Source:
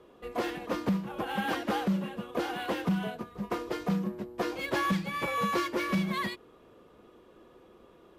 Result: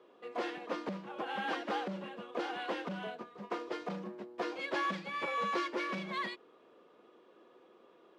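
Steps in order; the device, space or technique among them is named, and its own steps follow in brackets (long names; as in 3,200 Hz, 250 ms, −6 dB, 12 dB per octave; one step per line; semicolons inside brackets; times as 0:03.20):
public-address speaker with an overloaded transformer (saturating transformer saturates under 220 Hz; band-pass filter 310–5,200 Hz)
level −3.5 dB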